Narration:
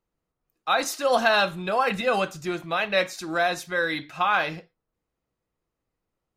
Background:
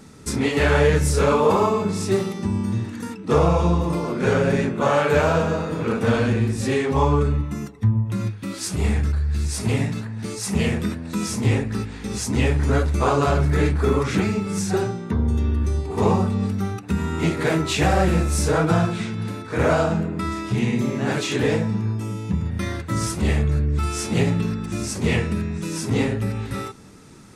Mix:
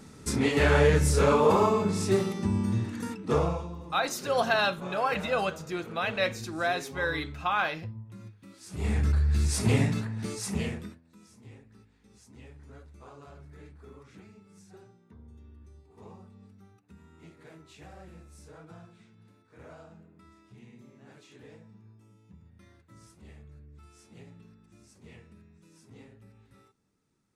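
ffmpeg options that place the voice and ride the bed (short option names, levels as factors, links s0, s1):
-filter_complex "[0:a]adelay=3250,volume=0.562[s0];[1:a]volume=5.62,afade=t=out:st=3.15:d=0.52:silence=0.141254,afade=t=in:st=8.66:d=0.49:silence=0.112202,afade=t=out:st=9.95:d=1.06:silence=0.0375837[s1];[s0][s1]amix=inputs=2:normalize=0"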